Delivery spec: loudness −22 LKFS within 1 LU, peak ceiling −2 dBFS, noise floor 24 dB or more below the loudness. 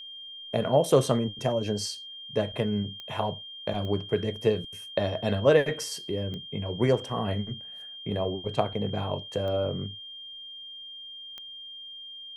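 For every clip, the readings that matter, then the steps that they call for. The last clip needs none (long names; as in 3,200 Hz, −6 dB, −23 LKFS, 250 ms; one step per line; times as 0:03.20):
number of clicks 5; interfering tone 3,200 Hz; level of the tone −40 dBFS; integrated loudness −28.5 LKFS; sample peak −7.0 dBFS; target loudness −22.0 LKFS
→ click removal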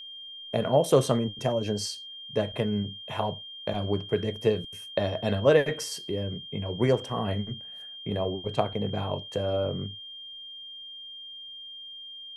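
number of clicks 0; interfering tone 3,200 Hz; level of the tone −40 dBFS
→ notch filter 3,200 Hz, Q 30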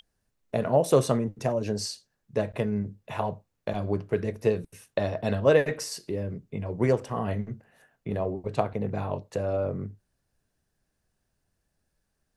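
interfering tone none found; integrated loudness −28.5 LKFS; sample peak −7.0 dBFS; target loudness −22.0 LKFS
→ level +6.5 dB
brickwall limiter −2 dBFS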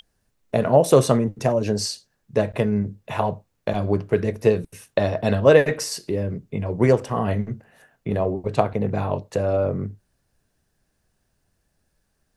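integrated loudness −22.0 LKFS; sample peak −2.0 dBFS; background noise floor −72 dBFS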